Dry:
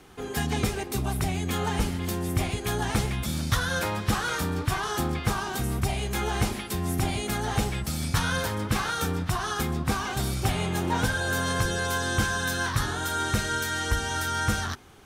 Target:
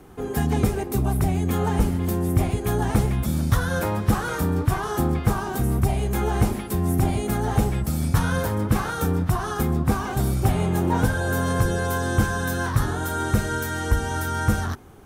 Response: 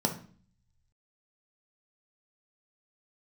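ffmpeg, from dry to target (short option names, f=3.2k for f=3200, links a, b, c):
-af "equalizer=f=3.8k:t=o:w=2.9:g=-13,acontrast=74"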